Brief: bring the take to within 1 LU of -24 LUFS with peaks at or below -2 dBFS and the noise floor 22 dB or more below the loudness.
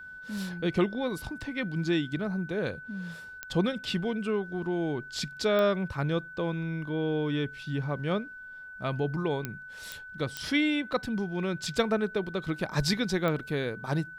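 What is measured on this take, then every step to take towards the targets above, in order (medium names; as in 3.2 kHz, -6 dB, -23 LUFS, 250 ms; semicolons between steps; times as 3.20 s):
clicks found 6; steady tone 1.5 kHz; tone level -42 dBFS; loudness -30.5 LUFS; peak level -11.5 dBFS; loudness target -24.0 LUFS
-> de-click; band-stop 1.5 kHz, Q 30; trim +6.5 dB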